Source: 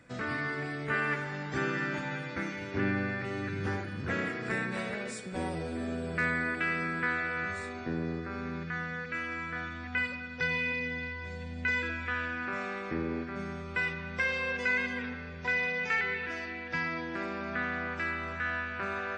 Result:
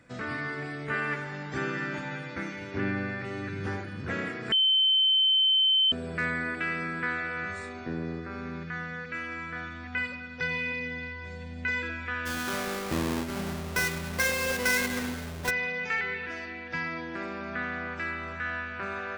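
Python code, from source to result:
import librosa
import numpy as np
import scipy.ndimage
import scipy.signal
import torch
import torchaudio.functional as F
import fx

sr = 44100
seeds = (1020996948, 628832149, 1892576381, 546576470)

y = fx.halfwave_hold(x, sr, at=(12.25, 15.49), fade=0.02)
y = fx.edit(y, sr, fx.bleep(start_s=4.52, length_s=1.4, hz=3080.0, db=-19.5), tone=tone)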